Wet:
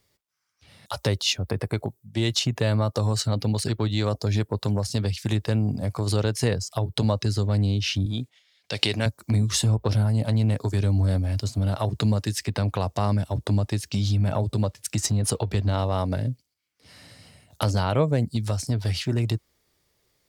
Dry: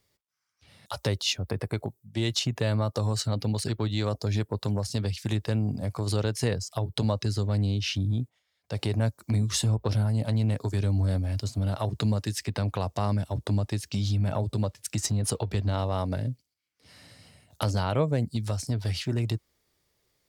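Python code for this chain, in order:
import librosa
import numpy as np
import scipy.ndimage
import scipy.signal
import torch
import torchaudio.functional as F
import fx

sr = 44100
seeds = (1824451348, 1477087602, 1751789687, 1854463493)

y = fx.weighting(x, sr, curve='D', at=(8.06, 9.06))
y = F.gain(torch.from_numpy(y), 3.5).numpy()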